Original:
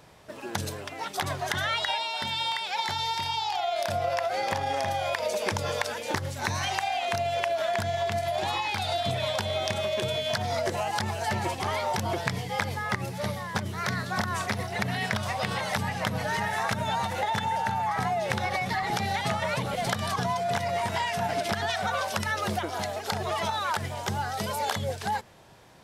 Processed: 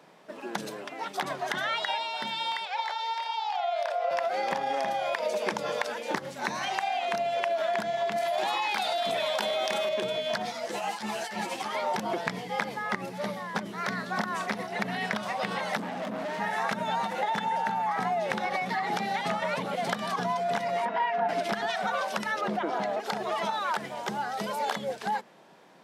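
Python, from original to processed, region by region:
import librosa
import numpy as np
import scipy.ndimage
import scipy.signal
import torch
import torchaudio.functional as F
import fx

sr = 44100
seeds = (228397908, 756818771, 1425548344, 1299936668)

y = fx.chain(x, sr, fx.steep_highpass(hz=460.0, slope=48),
    fx.high_shelf(hz=6200.0, db=-11.5), at=(2.65, 4.11))
y = fx.chain(y, sr, fx.highpass(hz=430.0, slope=6),
    fx.high_shelf(hz=11000.0, db=9.5),
    fx.env_flatten(amount_pct=100), at=(8.16, 9.89))
y = fx.chain(y, sr, fx.high_shelf(hz=2100.0, db=10.0),
    fx.over_compress(threshold_db=-28.0, ratio=-0.5),
    fx.ensemble(), at=(10.45, 11.75))
y = fx.chain(y, sr, fx.small_body(hz=(270.0, 620.0), ring_ms=25, db=14),
    fx.tube_stage(drive_db=31.0, bias=0.7), at=(15.77, 16.4))
y = fx.chain(y, sr, fx.bandpass_edges(low_hz=280.0, high_hz=2000.0),
    fx.comb(ms=4.2, depth=0.57), at=(20.85, 21.29))
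y = fx.chain(y, sr, fx.lowpass(hz=2000.0, slope=6),
    fx.env_flatten(amount_pct=70), at=(22.41, 23.0))
y = scipy.signal.sosfilt(scipy.signal.butter(6, 170.0, 'highpass', fs=sr, output='sos'), y)
y = fx.high_shelf(y, sr, hz=4400.0, db=-9.5)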